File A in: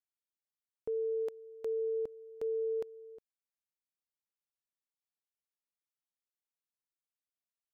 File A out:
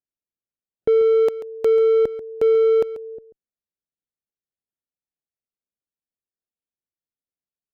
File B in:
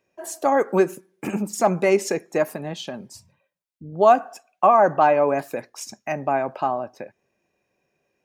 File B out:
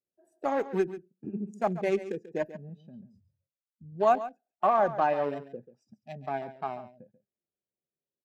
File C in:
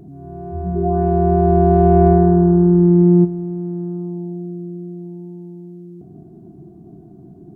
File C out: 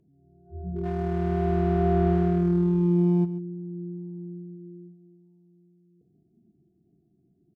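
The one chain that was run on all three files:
adaptive Wiener filter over 41 samples
noise reduction from a noise print of the clip's start 14 dB
harmonic generator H 4 −40 dB, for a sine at −1 dBFS
single-tap delay 138 ms −14 dB
normalise the peak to −12 dBFS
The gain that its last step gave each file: +19.5, −8.0, −10.5 decibels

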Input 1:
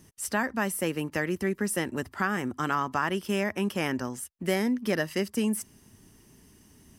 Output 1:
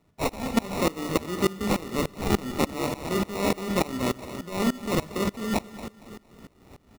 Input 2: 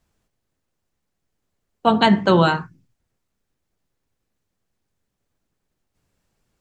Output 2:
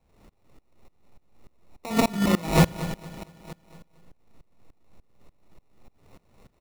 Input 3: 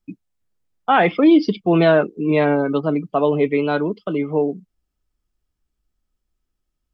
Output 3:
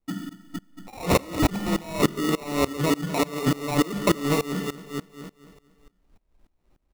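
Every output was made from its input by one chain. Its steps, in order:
mains-hum notches 50/100/150/200 Hz
dynamic equaliser 2,800 Hz, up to +8 dB, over −44 dBFS, Q 2.5
compressor whose output falls as the input rises −28 dBFS, ratio −1
sample-rate reduction 1,600 Hz, jitter 0%
on a send: repeating echo 230 ms, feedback 53%, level −11.5 dB
on the sum: four-comb reverb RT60 0.75 s, combs from 31 ms, DRR 10 dB
soft clipping −17.5 dBFS
tremolo with a ramp in dB swelling 3.4 Hz, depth 23 dB
normalise the peak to −9 dBFS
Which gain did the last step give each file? +10.5, +11.5, +10.0 decibels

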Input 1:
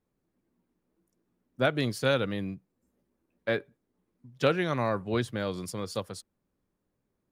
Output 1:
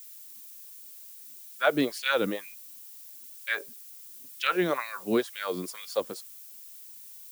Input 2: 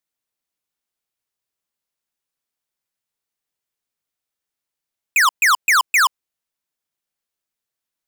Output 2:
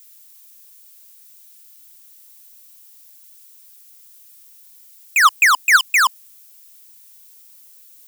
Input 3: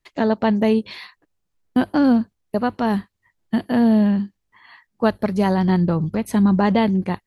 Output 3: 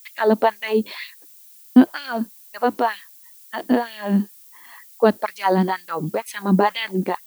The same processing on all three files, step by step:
auto-filter high-pass sine 2.1 Hz 230–2,700 Hz
background noise violet −47 dBFS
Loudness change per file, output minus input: +0.5, +1.5, −1.5 LU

